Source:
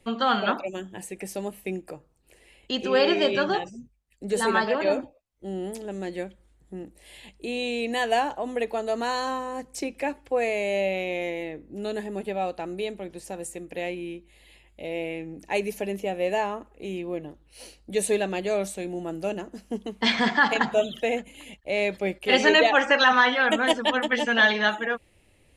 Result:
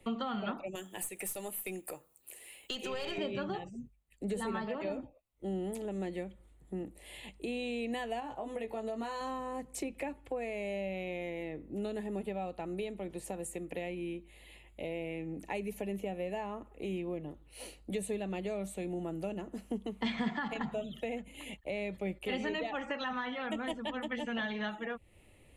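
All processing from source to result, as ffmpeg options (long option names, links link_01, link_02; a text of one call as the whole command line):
ffmpeg -i in.wav -filter_complex "[0:a]asettb=1/sr,asplit=3[link_01][link_02][link_03];[link_01]atrim=end=0.754[link_04];[link_02]atrim=start=0.75:end=3.18,asetpts=PTS-STARTPTS,afade=type=in:duration=0.004:curve=qsin,afade=type=out:start_time=2.426:duration=0.004:curve=qsin,aemphasis=mode=production:type=riaa,acompressor=threshold=-25dB:ratio=2:attack=3.2:release=140:knee=1:detection=peak,aeval=exprs='(tanh(8.91*val(0)+0.3)-tanh(0.3))/8.91':channel_layout=same[link_05];[link_03]atrim=start=3.176[link_06];[link_04][link_05]acrossfade=duration=0.004:curve1=hsin:curve2=qsin[link_07];[link_07][link_06]acrossfade=duration=0.004:curve1=qsin:curve2=hsin,asettb=1/sr,asplit=3[link_08][link_09][link_10];[link_08]atrim=end=8.204[link_11];[link_09]atrim=start=8.2:end=9.21,asetpts=PTS-STARTPTS,afade=type=in:duration=0.004:curve=qsin,afade=type=out:start_time=1.006:duration=0.004:curve=qsin,highpass=frequency=78:poles=1,acompressor=threshold=-29dB:ratio=2:attack=3.2:release=140:knee=1:detection=peak,asplit=2[link_12][link_13];[link_13]adelay=18,volume=-5dB[link_14];[link_12][link_14]amix=inputs=2:normalize=0,atrim=end_sample=44541[link_15];[link_10]atrim=start=9.206[link_16];[link_11][link_15]acrossfade=duration=0.004:curve1=hsin:curve2=qsin[link_17];[link_17][link_16]acrossfade=duration=0.004:curve1=qsin:curve2=hsin,equalizer=frequency=5300:width_type=o:width=0.63:gain=-10.5,bandreject=frequency=1600:width=8.8,acrossover=split=180[link_18][link_19];[link_19]acompressor=threshold=-37dB:ratio=5[link_20];[link_18][link_20]amix=inputs=2:normalize=0" out.wav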